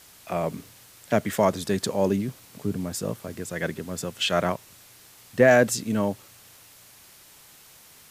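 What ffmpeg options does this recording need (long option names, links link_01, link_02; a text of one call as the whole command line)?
ffmpeg -i in.wav -af "adeclick=threshold=4,afwtdn=0.0032" out.wav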